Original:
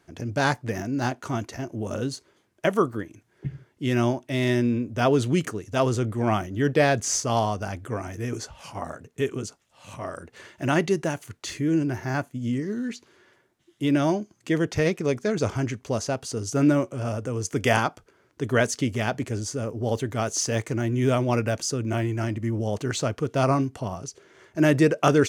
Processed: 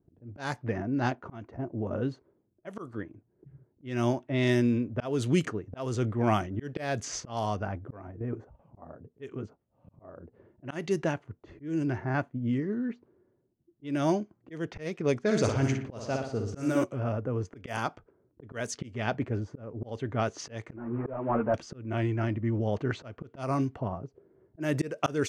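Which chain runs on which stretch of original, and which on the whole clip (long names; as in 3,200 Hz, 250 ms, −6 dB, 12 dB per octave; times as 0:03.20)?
0:08.11–0:08.77: parametric band 4,700 Hz −12 dB 0.59 octaves + output level in coarse steps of 10 dB
0:15.20–0:16.84: high-shelf EQ 6,500 Hz +8 dB + flutter between parallel walls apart 10.2 metres, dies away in 0.64 s
0:20.76–0:21.54: variable-slope delta modulation 16 kbit/s + drawn EQ curve 140 Hz 0 dB, 1,100 Hz +8 dB, 4,200 Hz −23 dB + string-ensemble chorus
whole clip: low-pass that shuts in the quiet parts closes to 310 Hz, open at −17.5 dBFS; volume swells 305 ms; level −2 dB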